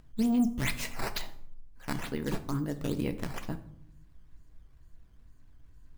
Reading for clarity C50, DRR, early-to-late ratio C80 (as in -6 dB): 14.5 dB, 8.5 dB, 17.5 dB